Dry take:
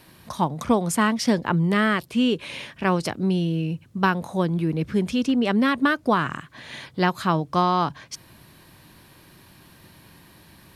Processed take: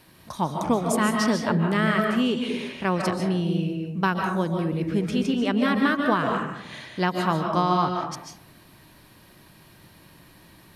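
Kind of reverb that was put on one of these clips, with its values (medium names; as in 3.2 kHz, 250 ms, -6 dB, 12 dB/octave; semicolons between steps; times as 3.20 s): algorithmic reverb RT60 0.8 s, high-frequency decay 0.35×, pre-delay 105 ms, DRR 2 dB; trim -3 dB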